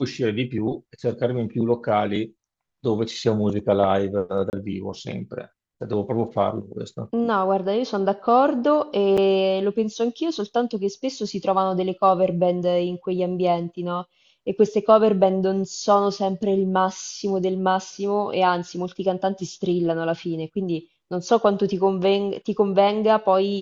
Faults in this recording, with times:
4.5–4.53 gap 29 ms
9.17–9.18 gap 6.3 ms

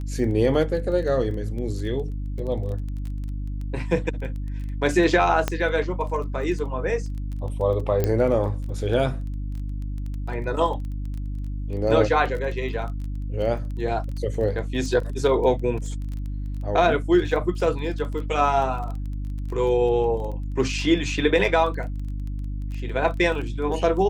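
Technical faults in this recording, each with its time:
crackle 16/s -31 dBFS
hum 50 Hz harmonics 6 -29 dBFS
5.48 pop -8 dBFS
8.04 pop -10 dBFS

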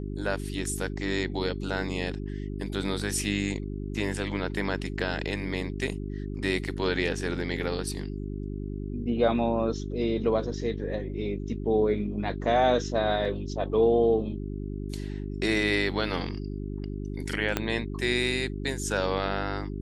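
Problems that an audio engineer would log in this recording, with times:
hum 50 Hz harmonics 8 -34 dBFS
13.25 gap 3.7 ms
17.57 pop -10 dBFS

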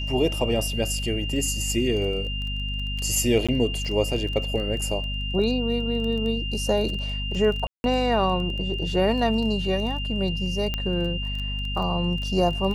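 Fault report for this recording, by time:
crackle 16/s -30 dBFS
hum 50 Hz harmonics 5 -30 dBFS
tone 2800 Hz -31 dBFS
3.47–3.49 gap 16 ms
7.67–7.84 gap 0.171 s
10.74 pop -13 dBFS

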